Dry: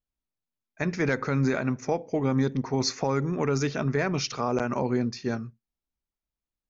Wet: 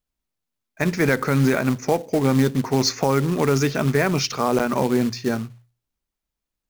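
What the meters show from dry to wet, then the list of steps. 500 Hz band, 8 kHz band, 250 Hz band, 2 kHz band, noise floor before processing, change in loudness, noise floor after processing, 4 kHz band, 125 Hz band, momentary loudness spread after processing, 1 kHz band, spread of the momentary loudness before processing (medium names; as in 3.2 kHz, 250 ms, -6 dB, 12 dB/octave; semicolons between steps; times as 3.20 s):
+6.5 dB, no reading, +6.5 dB, +6.5 dB, under -85 dBFS, +6.5 dB, -84 dBFS, +7.0 dB, +6.0 dB, 6 LU, +6.5 dB, 6 LU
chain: hum notches 60/120 Hz; short-mantissa float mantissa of 2-bit; trim +6.5 dB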